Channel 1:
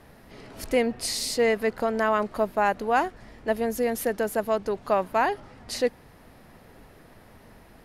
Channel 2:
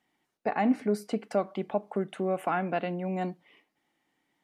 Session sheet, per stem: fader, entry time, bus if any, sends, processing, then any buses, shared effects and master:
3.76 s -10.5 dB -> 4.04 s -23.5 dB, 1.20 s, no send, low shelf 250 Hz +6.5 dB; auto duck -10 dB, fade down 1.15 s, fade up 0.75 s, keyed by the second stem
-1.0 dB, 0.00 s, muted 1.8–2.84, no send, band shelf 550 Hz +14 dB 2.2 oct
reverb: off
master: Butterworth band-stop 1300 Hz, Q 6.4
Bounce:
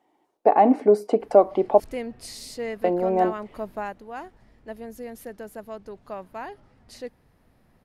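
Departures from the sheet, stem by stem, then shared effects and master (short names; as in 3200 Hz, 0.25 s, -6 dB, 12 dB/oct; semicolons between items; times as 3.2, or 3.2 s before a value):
stem 1 -10.5 dB -> -0.5 dB; master: missing Butterworth band-stop 1300 Hz, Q 6.4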